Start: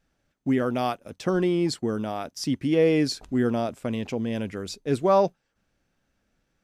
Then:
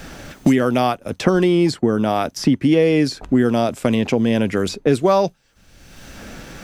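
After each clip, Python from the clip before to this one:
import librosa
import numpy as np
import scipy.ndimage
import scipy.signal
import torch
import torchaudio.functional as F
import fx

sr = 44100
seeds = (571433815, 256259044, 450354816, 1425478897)

y = fx.band_squash(x, sr, depth_pct=100)
y = F.gain(torch.from_numpy(y), 7.5).numpy()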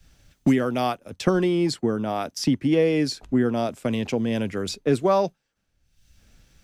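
y = fx.band_widen(x, sr, depth_pct=100)
y = F.gain(torch.from_numpy(y), -6.0).numpy()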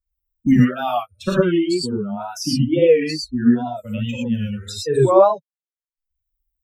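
y = fx.bin_expand(x, sr, power=3.0)
y = fx.rev_gated(y, sr, seeds[0], gate_ms=140, shape='rising', drr_db=-5.0)
y = fx.wow_flutter(y, sr, seeds[1], rate_hz=2.1, depth_cents=110.0)
y = F.gain(torch.from_numpy(y), 3.0).numpy()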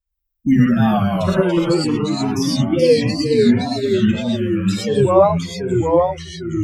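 y = fx.echo_pitch(x, sr, ms=138, semitones=-2, count=3, db_per_echo=-3.0)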